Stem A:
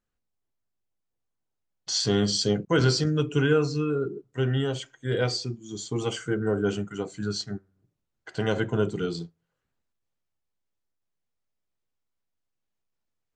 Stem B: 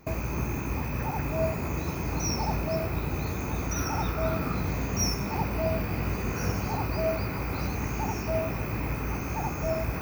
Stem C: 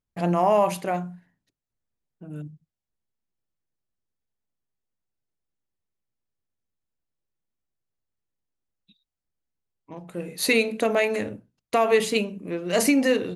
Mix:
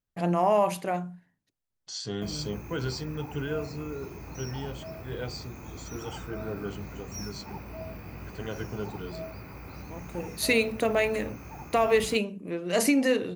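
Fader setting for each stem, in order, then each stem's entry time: -10.5, -12.0, -3.0 dB; 0.00, 2.15, 0.00 s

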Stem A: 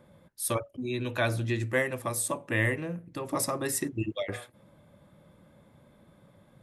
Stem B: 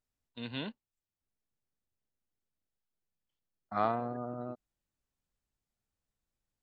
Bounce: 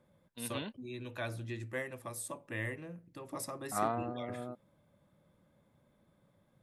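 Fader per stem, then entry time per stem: -11.5, -2.5 dB; 0.00, 0.00 s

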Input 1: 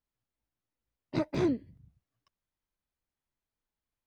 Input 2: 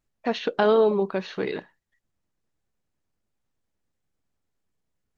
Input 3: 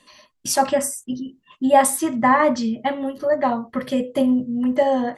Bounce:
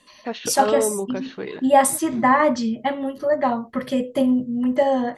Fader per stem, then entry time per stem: -9.5, -3.0, -0.5 dB; 0.75, 0.00, 0.00 s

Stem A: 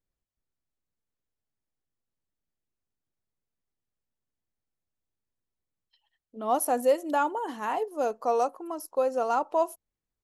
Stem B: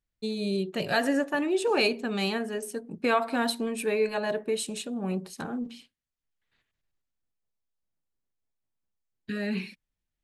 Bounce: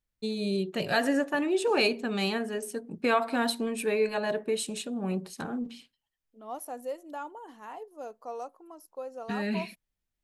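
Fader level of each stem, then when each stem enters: -13.0, -0.5 dB; 0.00, 0.00 s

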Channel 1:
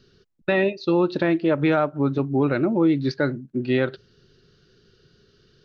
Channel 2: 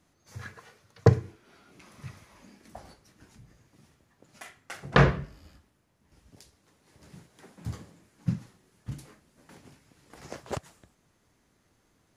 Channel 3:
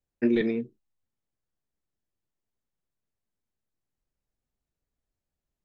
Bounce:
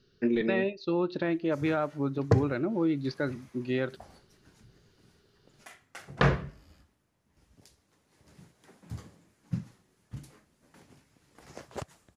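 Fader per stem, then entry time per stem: -8.5, -4.5, -3.5 dB; 0.00, 1.25, 0.00 s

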